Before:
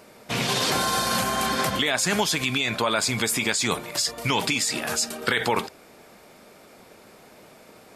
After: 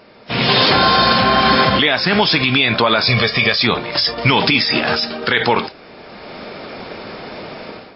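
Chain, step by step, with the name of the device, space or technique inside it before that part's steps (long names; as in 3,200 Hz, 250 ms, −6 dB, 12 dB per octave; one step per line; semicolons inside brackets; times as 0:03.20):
0:03.07–0:03.63: comb filter 1.7 ms, depth 77%
low-bitrate web radio (automatic gain control gain up to 15 dB; brickwall limiter −6.5 dBFS, peak gain reduction 5.5 dB; level +4.5 dB; MP3 24 kbit/s 12,000 Hz)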